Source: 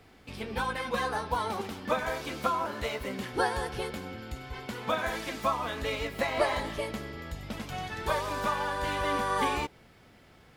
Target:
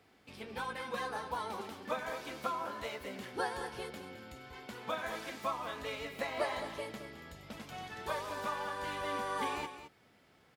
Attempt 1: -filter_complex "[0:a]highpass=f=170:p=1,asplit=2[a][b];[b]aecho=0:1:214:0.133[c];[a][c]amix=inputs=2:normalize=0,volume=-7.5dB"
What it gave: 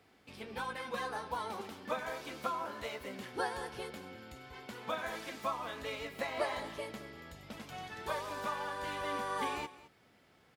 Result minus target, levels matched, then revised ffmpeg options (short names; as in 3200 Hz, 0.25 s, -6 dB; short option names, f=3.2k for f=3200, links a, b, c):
echo-to-direct -6.5 dB
-filter_complex "[0:a]highpass=f=170:p=1,asplit=2[a][b];[b]aecho=0:1:214:0.282[c];[a][c]amix=inputs=2:normalize=0,volume=-7.5dB"